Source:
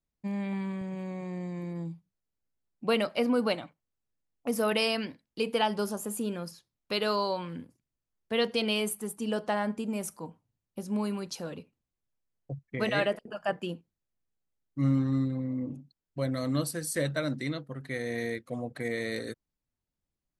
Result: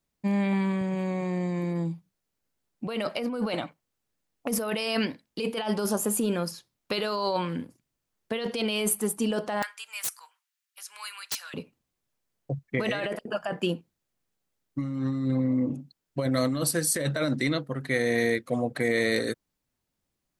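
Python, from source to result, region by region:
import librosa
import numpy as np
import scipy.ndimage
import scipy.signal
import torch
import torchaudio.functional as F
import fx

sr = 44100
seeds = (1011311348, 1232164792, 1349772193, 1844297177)

y = fx.chain(x, sr, fx.highpass(hz=1400.0, slope=24),
    fx.overflow_wrap(gain_db=31.0), at=(9.62, 11.54))
y = fx.low_shelf(y, sr, hz=98.0, db=-9.0)
y = fx.over_compress(y, sr, threshold_db=-33.0, ratio=-1.0)
y = F.gain(torch.from_numpy(y), 6.5).numpy()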